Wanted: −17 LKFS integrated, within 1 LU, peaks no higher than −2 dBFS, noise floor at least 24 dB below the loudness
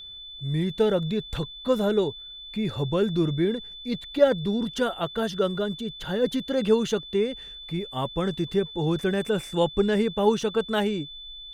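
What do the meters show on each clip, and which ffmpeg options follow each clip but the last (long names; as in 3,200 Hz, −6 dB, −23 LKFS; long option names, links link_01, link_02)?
interfering tone 3,500 Hz; level of the tone −39 dBFS; integrated loudness −26.0 LKFS; sample peak −7.0 dBFS; target loudness −17.0 LKFS
→ -af "bandreject=frequency=3500:width=30"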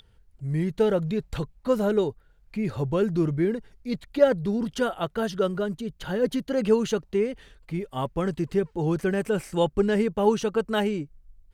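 interfering tone none found; integrated loudness −26.0 LKFS; sample peak −6.5 dBFS; target loudness −17.0 LKFS
→ -af "volume=9dB,alimiter=limit=-2dB:level=0:latency=1"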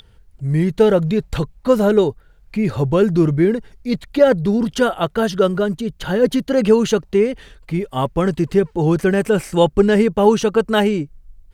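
integrated loudness −17.5 LKFS; sample peak −2.0 dBFS; background noise floor −50 dBFS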